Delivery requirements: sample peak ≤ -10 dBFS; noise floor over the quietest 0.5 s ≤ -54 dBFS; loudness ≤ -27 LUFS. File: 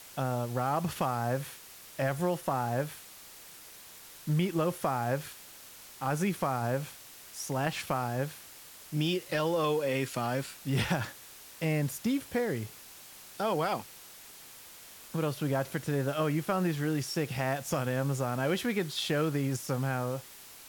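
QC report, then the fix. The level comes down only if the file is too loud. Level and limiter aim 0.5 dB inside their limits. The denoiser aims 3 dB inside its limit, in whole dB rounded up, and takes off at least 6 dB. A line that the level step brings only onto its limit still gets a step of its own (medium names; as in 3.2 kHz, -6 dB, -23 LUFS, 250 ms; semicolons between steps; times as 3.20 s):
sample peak -18.0 dBFS: pass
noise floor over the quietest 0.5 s -51 dBFS: fail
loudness -32.0 LUFS: pass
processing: noise reduction 6 dB, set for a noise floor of -51 dBFS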